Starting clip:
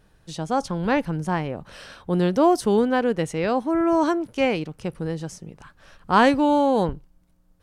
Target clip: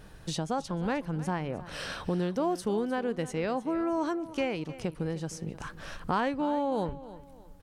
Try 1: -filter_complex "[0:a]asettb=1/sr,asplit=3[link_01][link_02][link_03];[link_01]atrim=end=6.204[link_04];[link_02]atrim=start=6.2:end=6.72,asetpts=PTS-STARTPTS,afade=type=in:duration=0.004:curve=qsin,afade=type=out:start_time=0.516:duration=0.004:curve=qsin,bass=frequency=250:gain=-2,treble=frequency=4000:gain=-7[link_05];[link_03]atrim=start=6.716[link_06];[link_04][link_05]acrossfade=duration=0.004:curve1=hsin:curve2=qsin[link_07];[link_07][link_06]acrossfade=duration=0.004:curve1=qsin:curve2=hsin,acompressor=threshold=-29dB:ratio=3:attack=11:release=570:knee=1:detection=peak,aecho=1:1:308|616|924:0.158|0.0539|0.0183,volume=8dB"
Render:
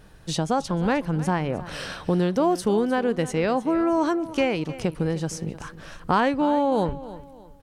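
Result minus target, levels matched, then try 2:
downward compressor: peak gain reduction −7.5 dB
-filter_complex "[0:a]asettb=1/sr,asplit=3[link_01][link_02][link_03];[link_01]atrim=end=6.204[link_04];[link_02]atrim=start=6.2:end=6.72,asetpts=PTS-STARTPTS,afade=type=in:duration=0.004:curve=qsin,afade=type=out:start_time=0.516:duration=0.004:curve=qsin,bass=frequency=250:gain=-2,treble=frequency=4000:gain=-7[link_05];[link_03]atrim=start=6.716[link_06];[link_04][link_05]acrossfade=duration=0.004:curve1=hsin:curve2=qsin[link_07];[link_07][link_06]acrossfade=duration=0.004:curve1=qsin:curve2=hsin,acompressor=threshold=-40.5dB:ratio=3:attack=11:release=570:knee=1:detection=peak,aecho=1:1:308|616|924:0.158|0.0539|0.0183,volume=8dB"

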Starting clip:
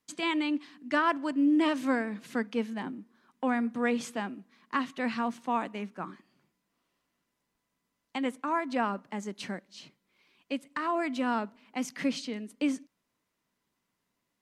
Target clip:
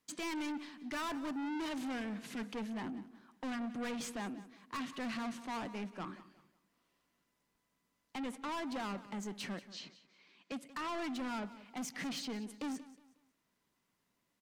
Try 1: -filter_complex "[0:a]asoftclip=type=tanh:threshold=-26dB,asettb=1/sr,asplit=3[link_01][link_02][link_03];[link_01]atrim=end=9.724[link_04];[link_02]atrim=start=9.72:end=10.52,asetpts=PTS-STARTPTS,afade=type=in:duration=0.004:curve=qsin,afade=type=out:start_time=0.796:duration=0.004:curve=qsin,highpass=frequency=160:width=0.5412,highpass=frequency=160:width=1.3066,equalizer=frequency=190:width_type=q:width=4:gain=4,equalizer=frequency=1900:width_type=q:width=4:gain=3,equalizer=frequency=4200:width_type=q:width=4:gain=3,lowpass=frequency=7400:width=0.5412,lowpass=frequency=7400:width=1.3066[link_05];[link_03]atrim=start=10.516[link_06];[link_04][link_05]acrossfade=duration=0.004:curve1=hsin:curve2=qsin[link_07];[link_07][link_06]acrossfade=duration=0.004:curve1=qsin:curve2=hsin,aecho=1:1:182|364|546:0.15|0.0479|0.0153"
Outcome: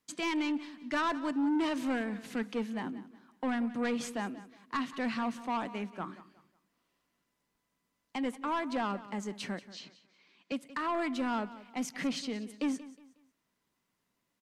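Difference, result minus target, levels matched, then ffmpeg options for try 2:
soft clipping: distortion −7 dB
-filter_complex "[0:a]asoftclip=type=tanh:threshold=-37dB,asettb=1/sr,asplit=3[link_01][link_02][link_03];[link_01]atrim=end=9.724[link_04];[link_02]atrim=start=9.72:end=10.52,asetpts=PTS-STARTPTS,afade=type=in:duration=0.004:curve=qsin,afade=type=out:start_time=0.796:duration=0.004:curve=qsin,highpass=frequency=160:width=0.5412,highpass=frequency=160:width=1.3066,equalizer=frequency=190:width_type=q:width=4:gain=4,equalizer=frequency=1900:width_type=q:width=4:gain=3,equalizer=frequency=4200:width_type=q:width=4:gain=3,lowpass=frequency=7400:width=0.5412,lowpass=frequency=7400:width=1.3066[link_05];[link_03]atrim=start=10.516[link_06];[link_04][link_05]acrossfade=duration=0.004:curve1=hsin:curve2=qsin[link_07];[link_07][link_06]acrossfade=duration=0.004:curve1=qsin:curve2=hsin,aecho=1:1:182|364|546:0.15|0.0479|0.0153"

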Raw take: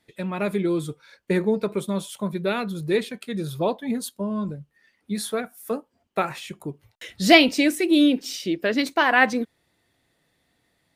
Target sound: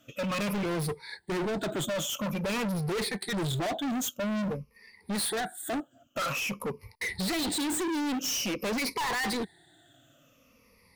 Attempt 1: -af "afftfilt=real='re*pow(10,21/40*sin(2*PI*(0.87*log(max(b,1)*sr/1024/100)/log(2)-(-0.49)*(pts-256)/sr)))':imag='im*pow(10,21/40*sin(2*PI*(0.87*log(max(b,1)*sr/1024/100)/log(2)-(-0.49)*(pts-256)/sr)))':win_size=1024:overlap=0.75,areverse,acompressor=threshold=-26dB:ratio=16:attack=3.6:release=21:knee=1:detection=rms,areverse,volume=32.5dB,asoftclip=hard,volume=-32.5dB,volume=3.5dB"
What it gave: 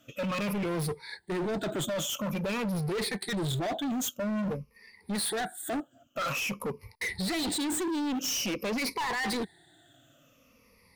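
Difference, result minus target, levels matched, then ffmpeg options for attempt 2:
downward compressor: peak gain reduction +7.5 dB
-af "afftfilt=real='re*pow(10,21/40*sin(2*PI*(0.87*log(max(b,1)*sr/1024/100)/log(2)-(-0.49)*(pts-256)/sr)))':imag='im*pow(10,21/40*sin(2*PI*(0.87*log(max(b,1)*sr/1024/100)/log(2)-(-0.49)*(pts-256)/sr)))':win_size=1024:overlap=0.75,areverse,acompressor=threshold=-18dB:ratio=16:attack=3.6:release=21:knee=1:detection=rms,areverse,volume=32.5dB,asoftclip=hard,volume=-32.5dB,volume=3.5dB"

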